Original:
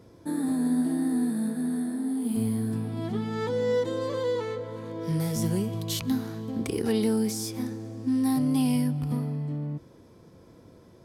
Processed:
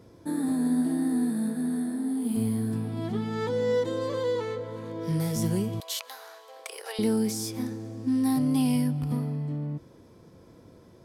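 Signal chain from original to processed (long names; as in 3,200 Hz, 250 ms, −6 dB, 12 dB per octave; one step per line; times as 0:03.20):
0:05.80–0:06.99: elliptic high-pass filter 550 Hz, stop band 60 dB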